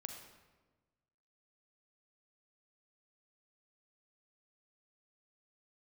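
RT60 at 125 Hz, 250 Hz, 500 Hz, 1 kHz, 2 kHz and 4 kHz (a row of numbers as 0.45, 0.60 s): 1.7, 1.5, 1.4, 1.2, 1.0, 0.85 s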